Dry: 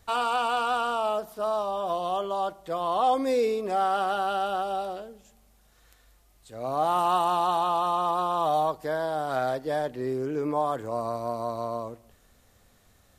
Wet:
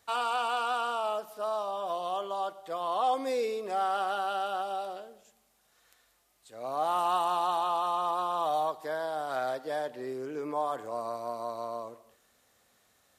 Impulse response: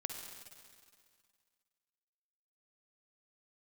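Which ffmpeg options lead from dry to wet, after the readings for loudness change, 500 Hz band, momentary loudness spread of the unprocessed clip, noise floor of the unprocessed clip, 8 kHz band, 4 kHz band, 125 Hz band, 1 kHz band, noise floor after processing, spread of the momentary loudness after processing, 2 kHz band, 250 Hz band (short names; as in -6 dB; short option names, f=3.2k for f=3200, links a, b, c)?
-4.5 dB, -5.0 dB, 8 LU, -61 dBFS, -3.0 dB, -3.0 dB, -13.5 dB, -4.0 dB, -69 dBFS, 8 LU, -3.5 dB, -9.0 dB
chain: -filter_complex "[0:a]highpass=f=490:p=1,asplit=2[a][b];[1:a]atrim=start_sample=2205,atrim=end_sample=6174,asetrate=23814,aresample=44100[c];[b][c]afir=irnorm=-1:irlink=0,volume=-14.5dB[d];[a][d]amix=inputs=2:normalize=0,volume=-4.5dB"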